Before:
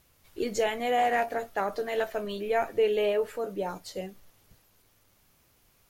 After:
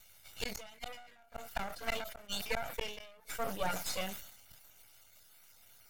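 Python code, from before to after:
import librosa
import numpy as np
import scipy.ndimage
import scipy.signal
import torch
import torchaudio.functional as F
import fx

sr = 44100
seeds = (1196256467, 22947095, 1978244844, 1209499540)

y = fx.spec_dropout(x, sr, seeds[0], share_pct=26)
y = fx.tilt_shelf(y, sr, db=-8.0, hz=920.0)
y = y + 0.87 * np.pad(y, (int(1.4 * sr / 1000.0), 0))[:len(y)]
y = fx.cheby_harmonics(y, sr, harmonics=(2, 4, 5, 7), levels_db=(-26, -30, -36, -31), full_scale_db=-11.0)
y = fx.gate_flip(y, sr, shuts_db=-21.0, range_db=-39)
y = np.maximum(y, 0.0)
y = fx.sustainer(y, sr, db_per_s=67.0)
y = y * librosa.db_to_amplitude(2.5)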